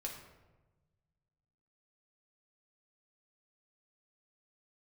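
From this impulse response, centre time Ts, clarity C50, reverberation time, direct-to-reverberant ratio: 34 ms, 5.5 dB, 1.2 s, −1.0 dB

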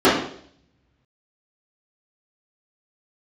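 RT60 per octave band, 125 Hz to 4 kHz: 1.9, 0.65, 0.65, 0.55, 0.55, 0.65 seconds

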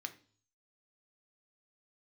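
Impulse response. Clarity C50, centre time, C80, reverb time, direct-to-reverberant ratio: 15.0 dB, 6 ms, 20.0 dB, 0.45 s, 6.5 dB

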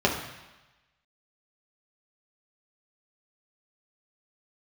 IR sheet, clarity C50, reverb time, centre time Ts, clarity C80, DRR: 6.0 dB, 1.1 s, 31 ms, 8.5 dB, −2.0 dB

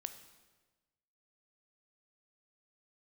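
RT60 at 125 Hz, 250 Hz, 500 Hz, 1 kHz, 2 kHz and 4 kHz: 1.5, 1.3, 1.3, 1.2, 1.1, 1.1 seconds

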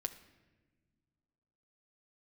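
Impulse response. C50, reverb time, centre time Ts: 13.0 dB, non-exponential decay, 8 ms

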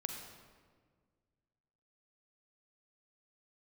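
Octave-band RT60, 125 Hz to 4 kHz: 2.4, 2.1, 1.9, 1.5, 1.3, 1.1 seconds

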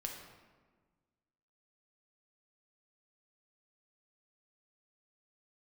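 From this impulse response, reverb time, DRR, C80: 1.4 s, 1.0 dB, 6.0 dB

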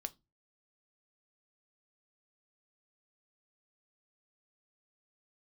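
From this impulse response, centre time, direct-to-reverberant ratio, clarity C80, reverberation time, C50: 3 ms, 9.0 dB, 33.0 dB, 0.20 s, 24.5 dB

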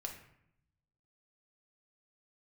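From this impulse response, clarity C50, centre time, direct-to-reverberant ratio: 7.0 dB, 22 ms, 1.5 dB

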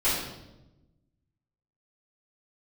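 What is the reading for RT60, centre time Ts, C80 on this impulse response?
0.95 s, 63 ms, 4.0 dB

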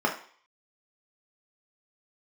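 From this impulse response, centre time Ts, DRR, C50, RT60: 19 ms, −0.5 dB, 9.0 dB, 0.50 s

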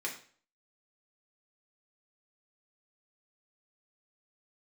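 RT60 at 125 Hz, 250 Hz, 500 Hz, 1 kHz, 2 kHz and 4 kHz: 0.50, 0.45, 0.45, 0.45, 0.45, 0.40 seconds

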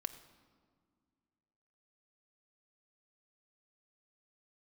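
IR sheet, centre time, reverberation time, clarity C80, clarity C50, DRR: 9 ms, 1.9 s, 13.5 dB, 12.5 dB, 9.0 dB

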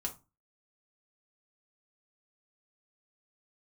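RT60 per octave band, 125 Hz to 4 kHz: 0.40, 0.35, 0.25, 0.30, 0.20, 0.20 seconds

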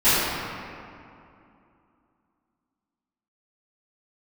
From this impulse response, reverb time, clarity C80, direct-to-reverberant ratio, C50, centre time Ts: 2.6 s, −2.0 dB, −18.5 dB, −4.0 dB, 166 ms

